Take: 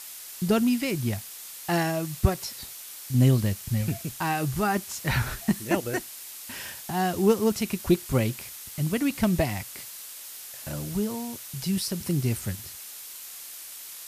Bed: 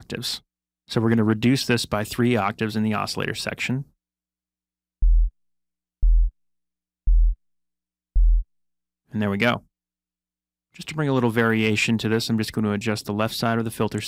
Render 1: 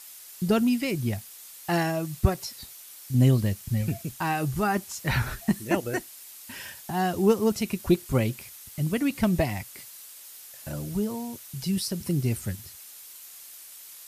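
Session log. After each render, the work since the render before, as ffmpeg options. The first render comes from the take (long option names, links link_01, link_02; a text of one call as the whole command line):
ffmpeg -i in.wav -af "afftdn=noise_reduction=6:noise_floor=-42" out.wav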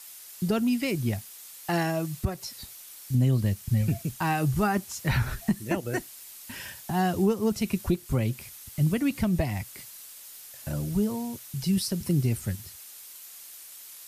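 ffmpeg -i in.wav -filter_complex "[0:a]acrossover=split=200|1900[link_01][link_02][link_03];[link_01]dynaudnorm=framelen=480:gausssize=11:maxgain=5dB[link_04];[link_04][link_02][link_03]amix=inputs=3:normalize=0,alimiter=limit=-15dB:level=0:latency=1:release=290" out.wav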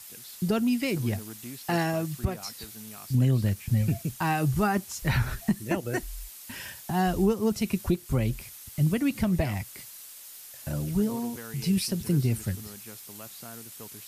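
ffmpeg -i in.wav -i bed.wav -filter_complex "[1:a]volume=-23dB[link_01];[0:a][link_01]amix=inputs=2:normalize=0" out.wav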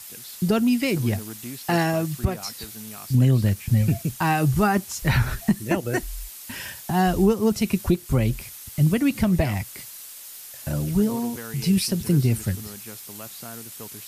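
ffmpeg -i in.wav -af "volume=5dB" out.wav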